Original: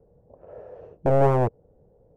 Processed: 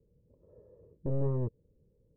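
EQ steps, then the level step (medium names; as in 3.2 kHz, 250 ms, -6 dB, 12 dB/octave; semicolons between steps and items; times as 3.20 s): boxcar filter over 60 samples; distance through air 260 m; -7.0 dB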